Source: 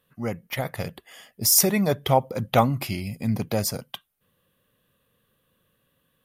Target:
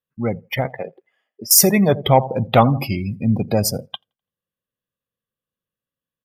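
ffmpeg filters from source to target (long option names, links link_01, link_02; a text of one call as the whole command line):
ffmpeg -i in.wav -filter_complex "[0:a]asettb=1/sr,asplit=3[link_01][link_02][link_03];[link_01]atrim=end=0.664[link_04];[link_02]atrim=start=0.66:end=1.51,asetpts=PTS-STARTPTS,afade=type=in:duration=0.004:curve=qsin,afade=type=out:start_time=0.846:duration=0.004:curve=qsin,acrossover=split=260 3100:gain=0.1 1 0.126[link_05][link_06][link_07];[link_05][link_06][link_07]amix=inputs=3:normalize=0[link_08];[link_03]atrim=start=1.506[link_09];[link_04][link_08]acrossfade=duration=0.004:curve1=hsin:curve2=qsin[link_10];[link_10][link_09]acrossfade=duration=0.004:curve1=qsin:curve2=hsin,asplit=2[link_11][link_12];[link_12]adelay=84,lowpass=frequency=4700:poles=1,volume=-17dB,asplit=2[link_13][link_14];[link_14]adelay=84,lowpass=frequency=4700:poles=1,volume=0.49,asplit=2[link_15][link_16];[link_16]adelay=84,lowpass=frequency=4700:poles=1,volume=0.49,asplit=2[link_17][link_18];[link_18]adelay=84,lowpass=frequency=4700:poles=1,volume=0.49[link_19];[link_11][link_13][link_15][link_17][link_19]amix=inputs=5:normalize=0,asplit=2[link_20][link_21];[link_21]aeval=exprs='0.596*sin(PI/2*1.58*val(0)/0.596)':channel_layout=same,volume=-4dB[link_22];[link_20][link_22]amix=inputs=2:normalize=0,afftdn=noise_reduction=29:noise_floor=-25,volume=-1dB" out.wav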